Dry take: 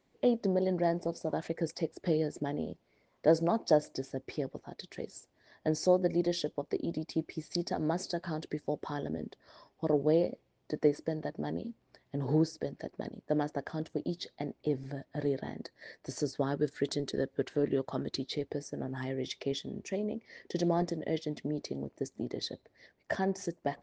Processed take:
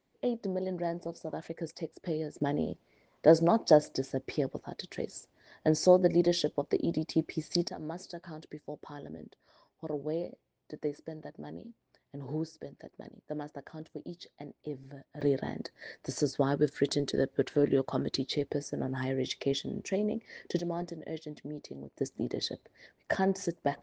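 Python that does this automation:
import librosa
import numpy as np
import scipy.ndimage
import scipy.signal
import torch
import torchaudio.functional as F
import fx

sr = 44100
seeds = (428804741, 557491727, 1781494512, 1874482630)

y = fx.gain(x, sr, db=fx.steps((0.0, -4.0), (2.41, 4.0), (7.68, -7.0), (15.21, 3.5), (20.59, -5.5), (21.97, 3.0)))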